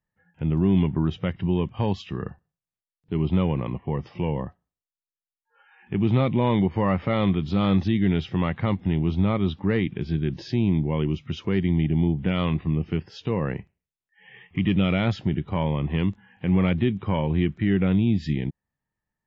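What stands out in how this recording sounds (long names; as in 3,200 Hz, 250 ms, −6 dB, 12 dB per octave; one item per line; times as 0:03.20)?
background noise floor −94 dBFS
spectral slope −7.5 dB per octave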